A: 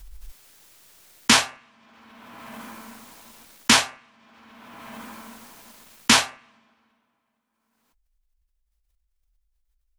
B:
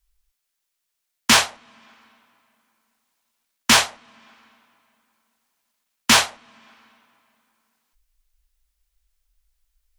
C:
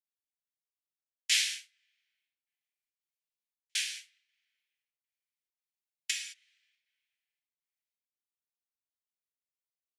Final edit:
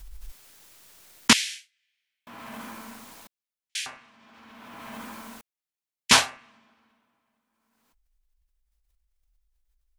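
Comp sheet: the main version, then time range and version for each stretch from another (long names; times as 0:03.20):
A
0:01.33–0:02.27: punch in from C
0:03.27–0:03.86: punch in from C
0:05.41–0:06.11: punch in from C
not used: B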